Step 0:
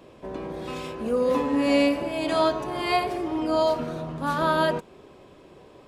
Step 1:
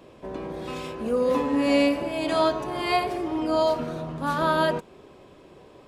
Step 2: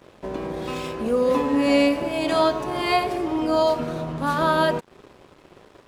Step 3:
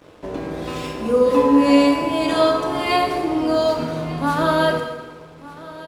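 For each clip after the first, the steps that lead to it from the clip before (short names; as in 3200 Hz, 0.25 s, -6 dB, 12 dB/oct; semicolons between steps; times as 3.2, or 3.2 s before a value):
nothing audible
in parallel at -2.5 dB: compressor, threshold -33 dBFS, peak gain reduction 15.5 dB; on the sum: crossover distortion -46.5 dBFS; gain +1.5 dB
echo 1.198 s -18.5 dB; FDN reverb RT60 1.3 s, low-frequency decay 0.95×, high-frequency decay 0.85×, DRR 2 dB; gain +1 dB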